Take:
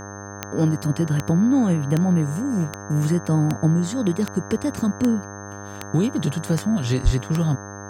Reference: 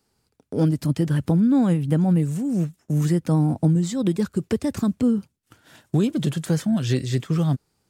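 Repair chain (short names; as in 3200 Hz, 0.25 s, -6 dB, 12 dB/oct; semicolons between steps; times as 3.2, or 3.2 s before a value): de-click; de-hum 100.4 Hz, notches 18; notch 6300 Hz, Q 30; 7.04–7.16 HPF 140 Hz 24 dB/oct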